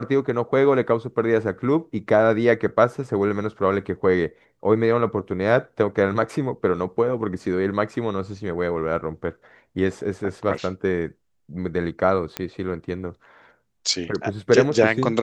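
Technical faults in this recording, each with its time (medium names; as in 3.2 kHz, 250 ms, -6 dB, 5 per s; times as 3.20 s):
12.37 s: pop -10 dBFS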